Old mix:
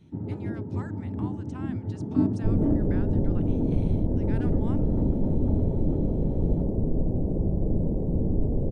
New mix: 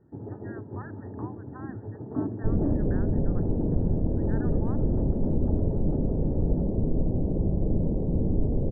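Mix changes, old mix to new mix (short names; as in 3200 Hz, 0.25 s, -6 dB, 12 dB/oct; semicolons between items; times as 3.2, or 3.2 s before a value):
first sound: send off; master: add brick-wall FIR low-pass 1900 Hz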